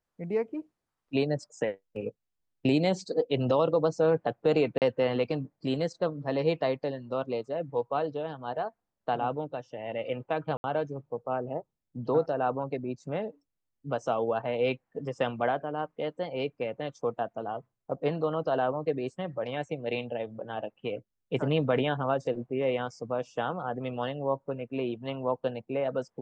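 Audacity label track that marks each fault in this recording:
4.780000	4.820000	dropout 38 ms
10.570000	10.640000	dropout 70 ms

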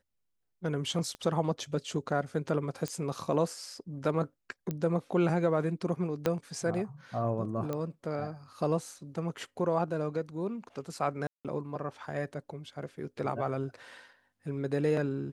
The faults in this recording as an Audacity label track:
1.150000	1.150000	pop -28 dBFS
2.880000	2.880000	pop -19 dBFS
4.710000	4.710000	pop -21 dBFS
6.260000	6.260000	pop -14 dBFS
7.730000	7.730000	pop -21 dBFS
11.270000	11.450000	dropout 177 ms

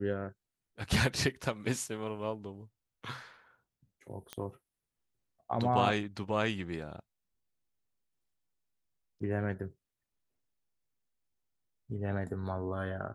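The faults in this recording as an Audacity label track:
4.330000	4.330000	pop -23 dBFS

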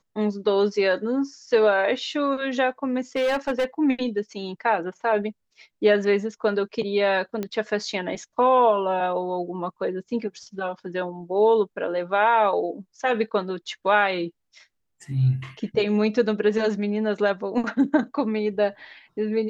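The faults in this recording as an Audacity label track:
3.160000	3.650000	clipped -19 dBFS
7.430000	7.430000	pop -16 dBFS

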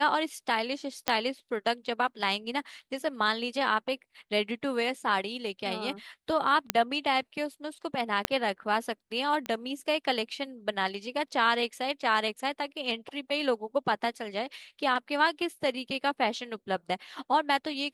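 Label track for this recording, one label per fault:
1.080000	1.080000	pop -8 dBFS
6.700000	6.700000	pop -7 dBFS
8.250000	8.250000	pop -9 dBFS
9.460000	9.460000	pop -20 dBFS

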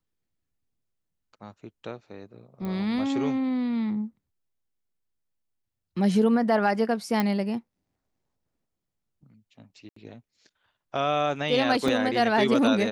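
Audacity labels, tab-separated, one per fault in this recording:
2.650000	2.650000	pop -22 dBFS
7.200000	7.200000	pop -12 dBFS
9.890000	9.960000	dropout 74 ms
11.880000	11.880000	dropout 2.8 ms

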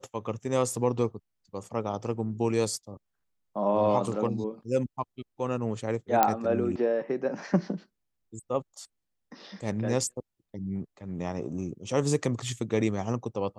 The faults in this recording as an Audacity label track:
6.230000	6.230000	pop -7 dBFS

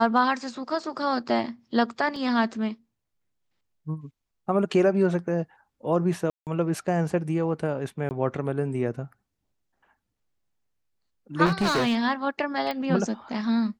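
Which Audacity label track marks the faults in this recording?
2.160000	2.160000	dropout 2.8 ms
6.300000	6.470000	dropout 168 ms
8.090000	8.110000	dropout 19 ms
11.450000	11.990000	clipped -19.5 dBFS
12.710000	12.710000	pop -18 dBFS

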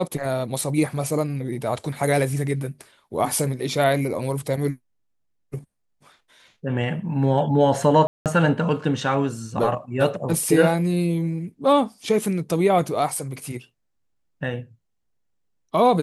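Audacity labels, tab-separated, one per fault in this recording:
8.070000	8.260000	dropout 188 ms

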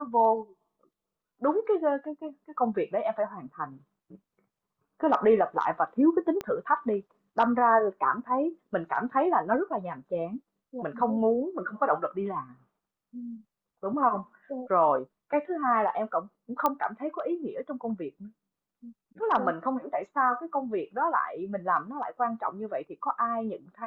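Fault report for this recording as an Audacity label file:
6.410000	6.410000	pop -19 dBFS
16.660000	16.660000	pop -12 dBFS

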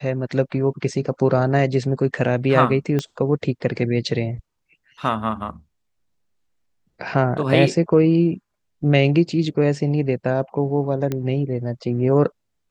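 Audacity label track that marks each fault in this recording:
2.990000	2.990000	pop -11 dBFS
11.120000	11.120000	pop -11 dBFS

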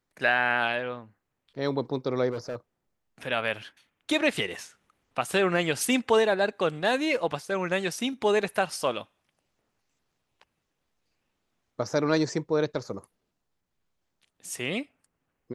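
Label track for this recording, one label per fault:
2.310000	2.560000	clipped -28.5 dBFS

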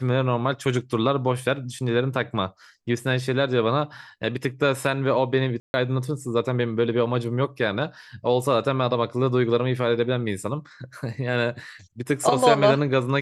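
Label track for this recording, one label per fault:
5.600000	5.740000	dropout 140 ms

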